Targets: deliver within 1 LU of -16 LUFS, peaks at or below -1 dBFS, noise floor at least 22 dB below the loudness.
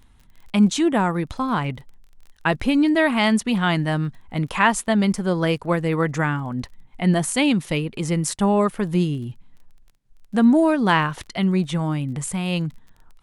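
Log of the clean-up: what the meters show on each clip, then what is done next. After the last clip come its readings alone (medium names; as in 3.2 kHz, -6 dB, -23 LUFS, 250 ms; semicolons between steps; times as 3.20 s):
tick rate 21 per s; loudness -21.5 LUFS; peak level -3.5 dBFS; loudness target -16.0 LUFS
-> de-click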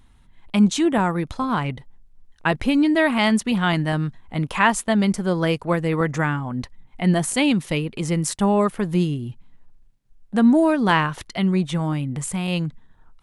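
tick rate 0 per s; loudness -21.5 LUFS; peak level -3.5 dBFS; loudness target -16.0 LUFS
-> trim +5.5 dB; peak limiter -1 dBFS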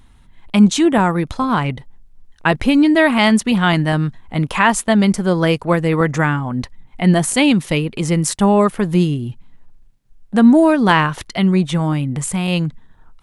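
loudness -16.0 LUFS; peak level -1.0 dBFS; noise floor -48 dBFS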